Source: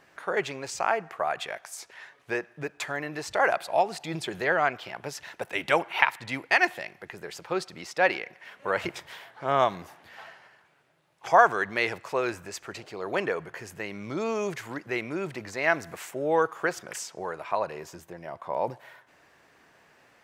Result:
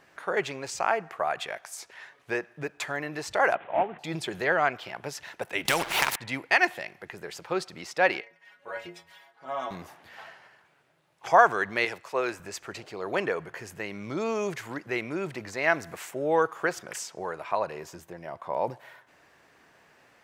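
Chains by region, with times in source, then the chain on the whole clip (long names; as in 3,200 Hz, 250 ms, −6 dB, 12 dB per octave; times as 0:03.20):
0:03.55–0:03.99: variable-slope delta modulation 16 kbit/s + high-pass filter 140 Hz + high-frequency loss of the air 300 metres
0:05.65–0:06.16: downward compressor 2.5 to 1, threshold −23 dBFS + leveller curve on the samples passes 1 + every bin compressed towards the loudest bin 2 to 1
0:08.21–0:09.71: low-shelf EQ 240 Hz −5.5 dB + stiff-string resonator 83 Hz, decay 0.36 s, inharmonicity 0.008
0:11.85–0:12.40: low-shelf EQ 150 Hz −11.5 dB + multiband upward and downward expander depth 40%
whole clip: no processing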